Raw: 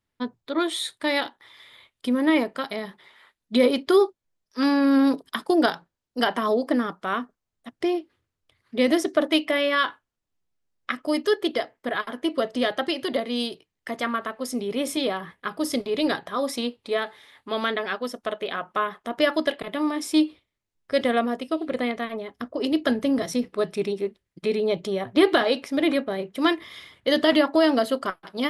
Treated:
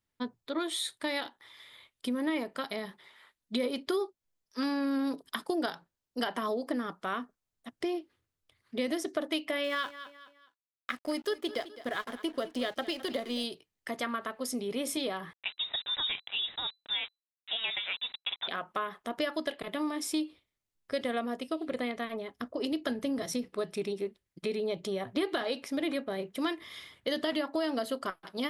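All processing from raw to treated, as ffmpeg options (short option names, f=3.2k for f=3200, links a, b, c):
-filter_complex "[0:a]asettb=1/sr,asplit=3[a][b][c];[a]atrim=end=9.644[d];[b]atrim=start=9.64:end=13.44,asetpts=PTS-STARTPTS,afade=t=in:d=0.004:c=qsin,afade=t=out:st=3.796:d=0.004:c=qsin,aeval=exprs='sgn(val(0))*max(abs(val(0))-0.00562,0)':c=same,aecho=1:1:210|420|630:0.126|0.0466|0.0172,atrim=end_sample=167580[e];[c]atrim=start=13.436[f];[d][e]acrossfade=d=0.004:c1=hsin:c2=qsin[g];[g][f]acrossfade=d=0.004:c1=qsin:c2=hsin,asettb=1/sr,asplit=3[h][i][j];[h]atrim=end=15.334[k];[i]atrim=start=15.33:end=18.48,asetpts=PTS-STARTPTS,afade=t=in:d=0.004:c=qsin,afade=t=out:st=3.146:d=0.004:c=qsin,lowshelf=f=250:g=-9.5,aeval=exprs='val(0)*gte(abs(val(0)),0.0168)':c=same,lowpass=f=3.4k:t=q:w=0.5098,lowpass=f=3.4k:t=q:w=0.6013,lowpass=f=3.4k:t=q:w=0.9,lowpass=f=3.4k:t=q:w=2.563,afreqshift=-4000[l];[j]atrim=start=18.476[m];[k][l]acrossfade=d=0.004:c1=hsin:c2=qsin[n];[n][m]acrossfade=d=0.004:c1=qsin:c2=hsin,highshelf=f=4.7k:g=5,acompressor=threshold=-25dB:ratio=3,volume=-5dB"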